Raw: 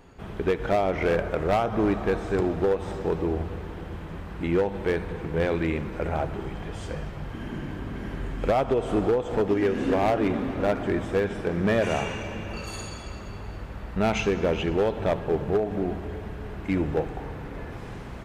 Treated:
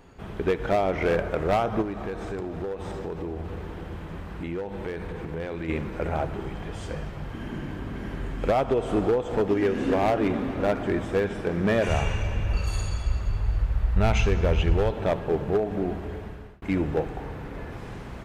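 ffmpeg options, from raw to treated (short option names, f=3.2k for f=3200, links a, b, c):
-filter_complex "[0:a]asplit=3[a][b][c];[a]afade=t=out:st=1.81:d=0.02[d];[b]acompressor=threshold=-29dB:ratio=5:attack=3.2:release=140:knee=1:detection=peak,afade=t=in:st=1.81:d=0.02,afade=t=out:st=5.68:d=0.02[e];[c]afade=t=in:st=5.68:d=0.02[f];[d][e][f]amix=inputs=3:normalize=0,asplit=3[g][h][i];[g]afade=t=out:st=11.87:d=0.02[j];[h]asubboost=boost=7.5:cutoff=85,afade=t=in:st=11.87:d=0.02,afade=t=out:st=14.9:d=0.02[k];[i]afade=t=in:st=14.9:d=0.02[l];[j][k][l]amix=inputs=3:normalize=0,asplit=2[m][n];[m]atrim=end=16.62,asetpts=PTS-STARTPTS,afade=t=out:st=16.04:d=0.58:c=qsin[o];[n]atrim=start=16.62,asetpts=PTS-STARTPTS,afade=t=in:d=0.004:c=hsin[p];[o][p]concat=n=2:v=0:a=1"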